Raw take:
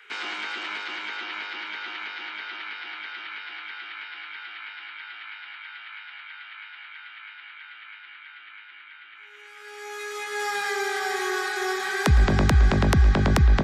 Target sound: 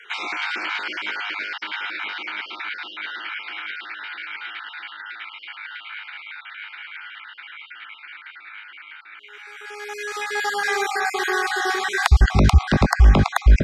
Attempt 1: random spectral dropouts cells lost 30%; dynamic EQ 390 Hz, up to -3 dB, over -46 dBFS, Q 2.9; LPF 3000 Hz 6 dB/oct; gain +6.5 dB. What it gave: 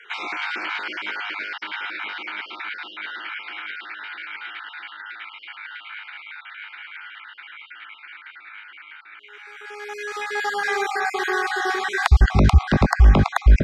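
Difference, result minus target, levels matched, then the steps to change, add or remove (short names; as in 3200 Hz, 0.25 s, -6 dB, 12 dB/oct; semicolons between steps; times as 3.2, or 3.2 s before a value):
8000 Hz band -5.0 dB
change: LPF 7900 Hz 6 dB/oct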